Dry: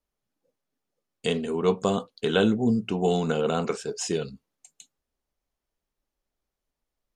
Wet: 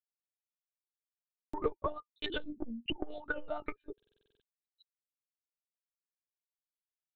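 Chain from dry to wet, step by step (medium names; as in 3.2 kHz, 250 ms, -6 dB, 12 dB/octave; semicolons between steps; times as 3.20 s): expander on every frequency bin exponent 3; dynamic bell 450 Hz, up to +4 dB, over -40 dBFS, Q 0.78; compression 4:1, threshold -34 dBFS, peak gain reduction 15 dB; rippled Chebyshev high-pass 230 Hz, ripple 3 dB; peak limiter -31.5 dBFS, peak gain reduction 7.5 dB; transient shaper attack +7 dB, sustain -5 dB; monotone LPC vocoder at 8 kHz 300 Hz; buffer glitch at 1.07/3.95 s, samples 2048, times 9; transformer saturation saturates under 180 Hz; trim +7 dB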